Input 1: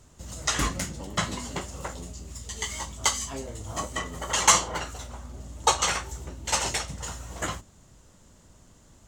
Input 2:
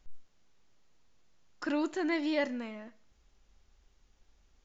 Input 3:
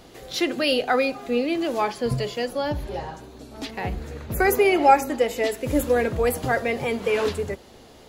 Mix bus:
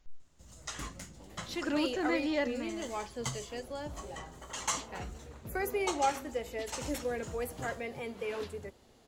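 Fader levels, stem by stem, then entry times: −15.0, −1.0, −14.5 decibels; 0.20, 0.00, 1.15 seconds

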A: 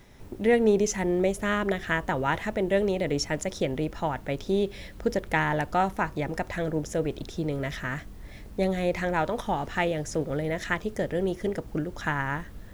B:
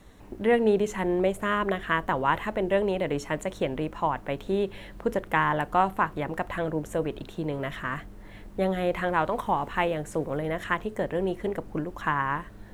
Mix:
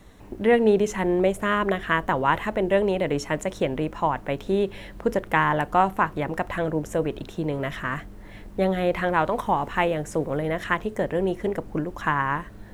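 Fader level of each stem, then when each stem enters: −13.0, +2.0 decibels; 0.00, 0.00 seconds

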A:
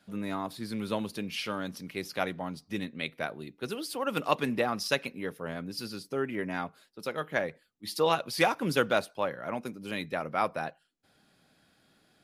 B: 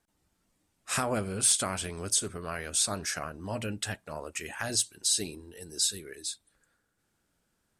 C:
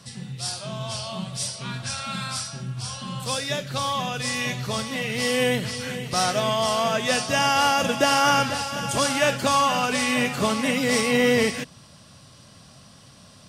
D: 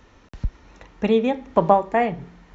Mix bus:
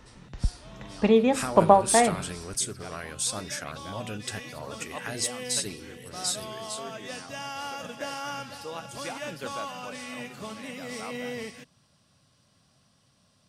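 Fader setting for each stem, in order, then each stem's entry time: −13.0, −2.0, −16.0, −1.0 decibels; 0.65, 0.45, 0.00, 0.00 seconds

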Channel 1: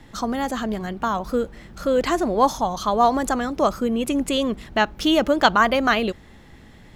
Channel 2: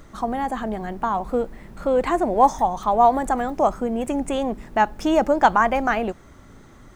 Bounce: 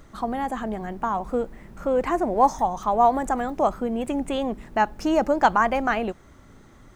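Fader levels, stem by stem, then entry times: −18.5, −3.5 decibels; 0.00, 0.00 seconds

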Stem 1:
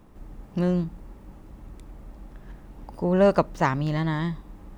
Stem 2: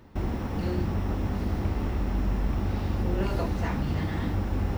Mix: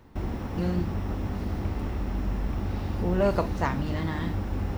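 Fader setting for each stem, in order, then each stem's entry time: −6.0, −2.0 decibels; 0.00, 0.00 seconds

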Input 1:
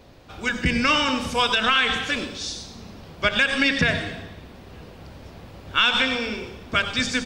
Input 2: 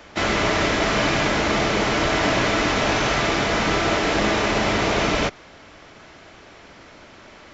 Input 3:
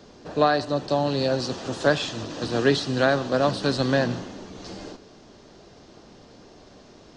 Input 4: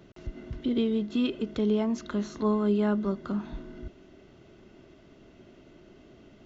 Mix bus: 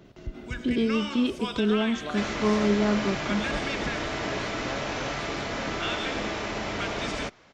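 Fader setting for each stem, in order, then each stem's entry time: −14.0, −11.0, −18.0, +1.5 decibels; 0.05, 2.00, 1.65, 0.00 seconds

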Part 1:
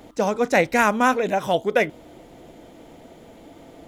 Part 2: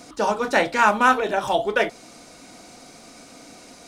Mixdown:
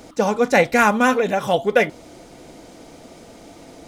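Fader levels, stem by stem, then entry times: +2.0, −5.0 decibels; 0.00, 0.00 seconds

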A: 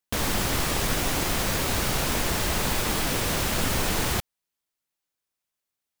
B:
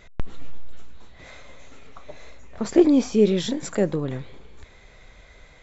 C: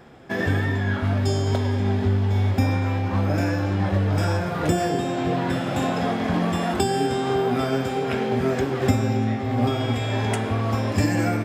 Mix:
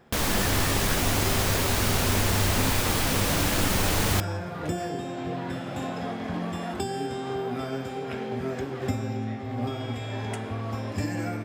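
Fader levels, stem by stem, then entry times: +0.5 dB, muted, −8.5 dB; 0.00 s, muted, 0.00 s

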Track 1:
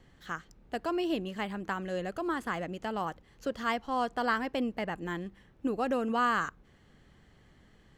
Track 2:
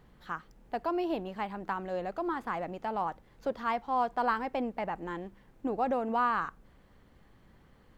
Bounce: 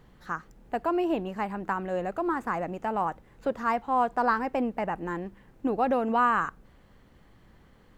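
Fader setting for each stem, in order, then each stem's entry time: −7.0, +2.5 decibels; 0.00, 0.00 seconds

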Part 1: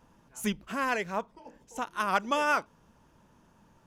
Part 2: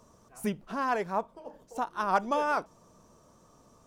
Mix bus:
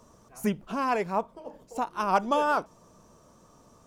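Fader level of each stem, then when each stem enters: −10.0, +2.5 decibels; 0.00, 0.00 seconds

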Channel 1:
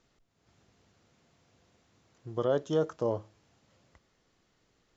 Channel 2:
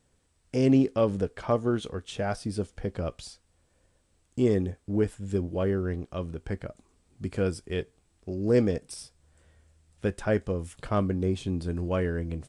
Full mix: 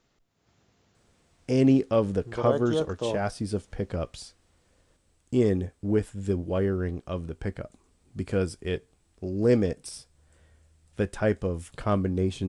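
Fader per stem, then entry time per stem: +0.5, +1.0 decibels; 0.00, 0.95 seconds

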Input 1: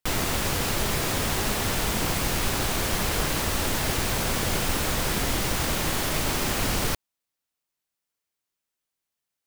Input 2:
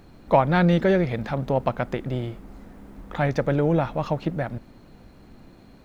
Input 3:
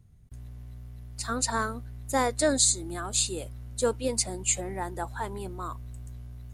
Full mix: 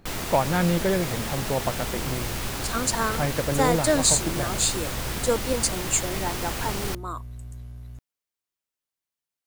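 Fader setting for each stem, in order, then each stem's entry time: −5.0, −4.0, +2.5 decibels; 0.00, 0.00, 1.45 seconds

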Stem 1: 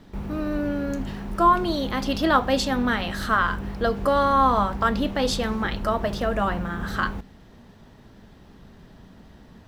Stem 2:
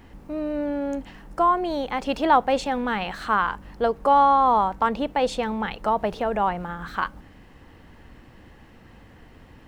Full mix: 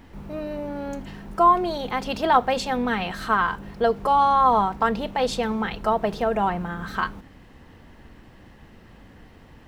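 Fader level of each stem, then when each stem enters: −6.5, −0.5 decibels; 0.00, 0.00 seconds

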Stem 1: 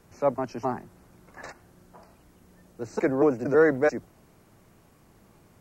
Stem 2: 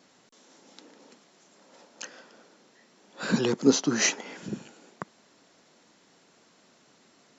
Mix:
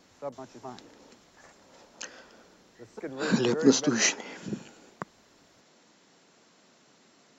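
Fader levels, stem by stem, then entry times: −13.5, 0.0 decibels; 0.00, 0.00 seconds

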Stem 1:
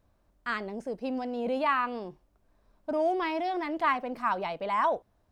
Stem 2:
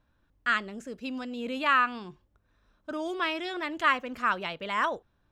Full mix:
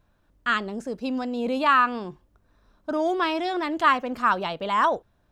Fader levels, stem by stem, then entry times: −1.0, +2.5 decibels; 0.00, 0.00 seconds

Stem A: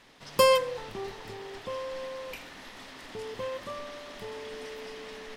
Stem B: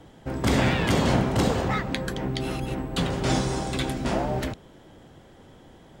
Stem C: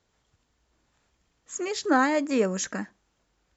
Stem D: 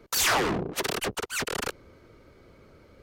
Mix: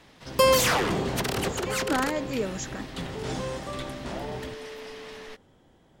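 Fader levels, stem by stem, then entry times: +1.0, −9.5, −5.5, −1.0 decibels; 0.00, 0.00, 0.00, 0.40 seconds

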